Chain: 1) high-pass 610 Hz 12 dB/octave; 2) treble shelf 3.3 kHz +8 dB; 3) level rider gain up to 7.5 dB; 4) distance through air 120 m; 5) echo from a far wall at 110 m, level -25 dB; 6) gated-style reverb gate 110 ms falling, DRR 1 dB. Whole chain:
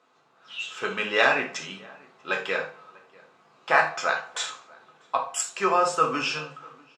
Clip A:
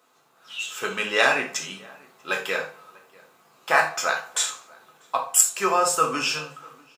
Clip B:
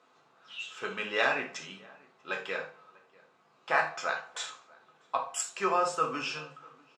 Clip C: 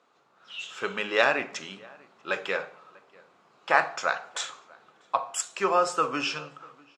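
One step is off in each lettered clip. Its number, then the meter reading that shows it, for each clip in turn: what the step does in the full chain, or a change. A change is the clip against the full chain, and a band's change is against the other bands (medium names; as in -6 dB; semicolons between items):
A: 4, 8 kHz band +11.0 dB; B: 3, loudness change -6.5 LU; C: 6, crest factor change +2.0 dB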